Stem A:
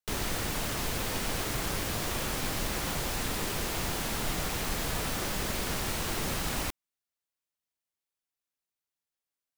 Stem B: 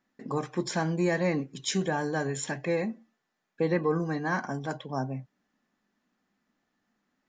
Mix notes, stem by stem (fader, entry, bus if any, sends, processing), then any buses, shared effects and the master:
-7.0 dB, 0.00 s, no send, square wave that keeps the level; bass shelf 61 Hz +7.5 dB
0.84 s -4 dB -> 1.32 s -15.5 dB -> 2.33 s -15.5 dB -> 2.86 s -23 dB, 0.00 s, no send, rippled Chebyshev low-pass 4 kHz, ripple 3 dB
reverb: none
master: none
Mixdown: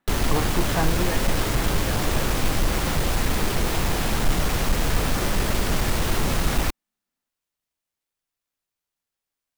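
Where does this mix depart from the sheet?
stem A -7.0 dB -> +2.5 dB; stem B -4.0 dB -> +4.5 dB

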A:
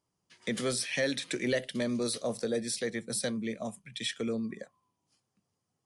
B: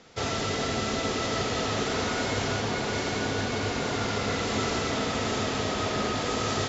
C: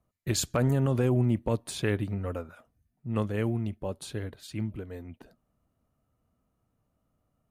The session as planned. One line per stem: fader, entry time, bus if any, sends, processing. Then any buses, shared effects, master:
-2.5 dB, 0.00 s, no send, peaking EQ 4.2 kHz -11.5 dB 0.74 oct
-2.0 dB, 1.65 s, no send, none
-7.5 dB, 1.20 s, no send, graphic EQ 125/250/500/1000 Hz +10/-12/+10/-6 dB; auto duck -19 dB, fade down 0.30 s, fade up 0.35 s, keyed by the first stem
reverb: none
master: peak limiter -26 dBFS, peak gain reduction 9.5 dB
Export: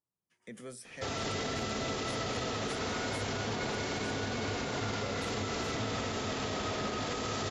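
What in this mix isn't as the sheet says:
stem A -2.5 dB -> -13.5 dB; stem B: entry 1.65 s -> 0.85 s

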